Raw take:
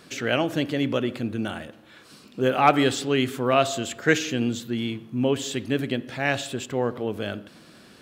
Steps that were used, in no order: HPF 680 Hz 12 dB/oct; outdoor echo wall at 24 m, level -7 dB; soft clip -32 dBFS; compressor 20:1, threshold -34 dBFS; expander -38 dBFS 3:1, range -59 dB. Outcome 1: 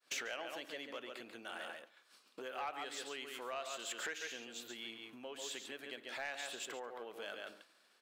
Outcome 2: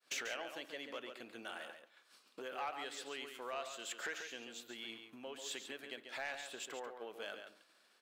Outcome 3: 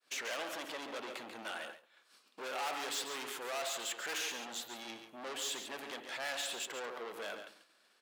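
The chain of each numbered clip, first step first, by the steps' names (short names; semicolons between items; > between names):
expander > outdoor echo > compressor > HPF > soft clip; compressor > expander > HPF > soft clip > outdoor echo; soft clip > compressor > outdoor echo > expander > HPF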